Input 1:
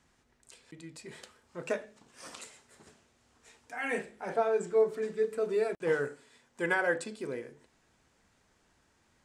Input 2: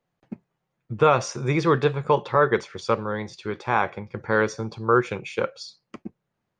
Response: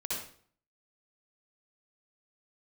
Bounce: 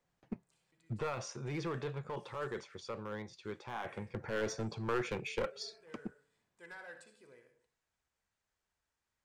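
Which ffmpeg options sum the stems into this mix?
-filter_complex "[0:a]equalizer=frequency=250:width=0.69:gain=-9.5,asoftclip=type=tanh:threshold=-24.5dB,volume=-19dB,asplit=2[link_01][link_02];[link_02]volume=-11dB[link_03];[1:a]alimiter=limit=-16.5dB:level=0:latency=1:release=16,volume=3dB,afade=type=out:start_time=0.76:duration=0.45:silence=0.375837,afade=type=in:start_time=3.59:duration=0.65:silence=0.421697,asplit=2[link_04][link_05];[link_05]apad=whole_len=407750[link_06];[link_01][link_06]sidechaincompress=threshold=-41dB:ratio=8:attack=16:release=889[link_07];[2:a]atrim=start_sample=2205[link_08];[link_03][link_08]afir=irnorm=-1:irlink=0[link_09];[link_07][link_04][link_09]amix=inputs=3:normalize=0,aeval=exprs='clip(val(0),-1,0.02)':channel_layout=same"

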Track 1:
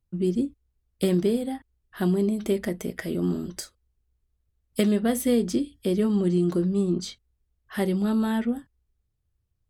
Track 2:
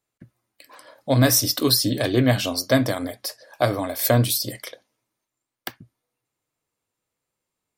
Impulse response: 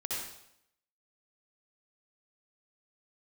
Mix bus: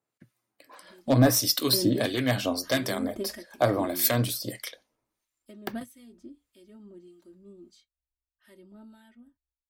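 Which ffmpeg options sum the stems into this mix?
-filter_complex "[0:a]aecho=1:1:3.2:0.87,adelay=700,volume=-9dB[link_01];[1:a]highpass=120,volume=0dB,asplit=2[link_02][link_03];[link_03]apad=whole_len=458739[link_04];[link_01][link_04]sidechaingate=range=-16dB:threshold=-44dB:ratio=16:detection=peak[link_05];[link_05][link_02]amix=inputs=2:normalize=0,aeval=exprs='0.335*(abs(mod(val(0)/0.335+3,4)-2)-1)':channel_layout=same,acrossover=split=1500[link_06][link_07];[link_06]aeval=exprs='val(0)*(1-0.7/2+0.7/2*cos(2*PI*1.6*n/s))':channel_layout=same[link_08];[link_07]aeval=exprs='val(0)*(1-0.7/2-0.7/2*cos(2*PI*1.6*n/s))':channel_layout=same[link_09];[link_08][link_09]amix=inputs=2:normalize=0"

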